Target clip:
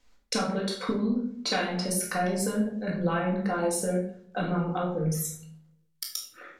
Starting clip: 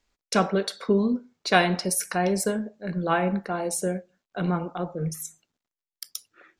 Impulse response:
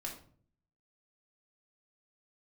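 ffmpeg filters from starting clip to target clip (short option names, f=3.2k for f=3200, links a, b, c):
-filter_complex "[0:a]acompressor=threshold=-33dB:ratio=6[a];[1:a]atrim=start_sample=2205,asetrate=35280,aresample=44100[b];[a][b]afir=irnorm=-1:irlink=0,volume=7dB"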